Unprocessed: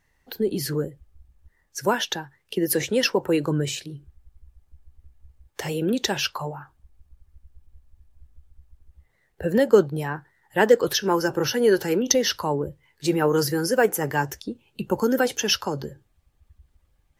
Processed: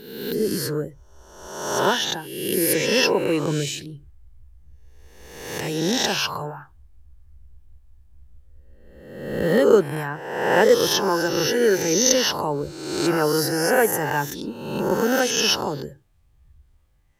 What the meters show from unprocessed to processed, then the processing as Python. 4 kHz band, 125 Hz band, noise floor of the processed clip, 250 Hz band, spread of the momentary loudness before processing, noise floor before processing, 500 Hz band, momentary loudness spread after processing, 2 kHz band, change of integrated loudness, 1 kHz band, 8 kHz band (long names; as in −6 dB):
+4.5 dB, +0.5 dB, −57 dBFS, +1.0 dB, 15 LU, −68 dBFS, +2.0 dB, 15 LU, +3.5 dB, +2.5 dB, +3.0 dB, +5.0 dB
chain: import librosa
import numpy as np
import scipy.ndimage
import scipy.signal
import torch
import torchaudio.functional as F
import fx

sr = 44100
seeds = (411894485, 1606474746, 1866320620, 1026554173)

y = fx.spec_swells(x, sr, rise_s=1.06)
y = y * 10.0 ** (-1.5 / 20.0)